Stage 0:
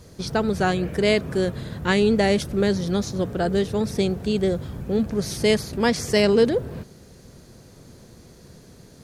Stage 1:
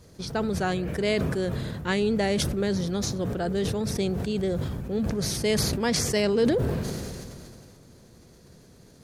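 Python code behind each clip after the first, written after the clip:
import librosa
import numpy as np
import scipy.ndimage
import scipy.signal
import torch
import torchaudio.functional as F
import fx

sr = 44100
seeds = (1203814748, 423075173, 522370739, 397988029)

y = fx.sustainer(x, sr, db_per_s=24.0)
y = F.gain(torch.from_numpy(y), -6.0).numpy()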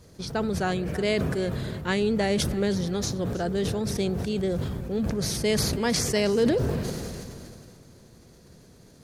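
y = fx.echo_feedback(x, sr, ms=318, feedback_pct=39, wet_db=-17)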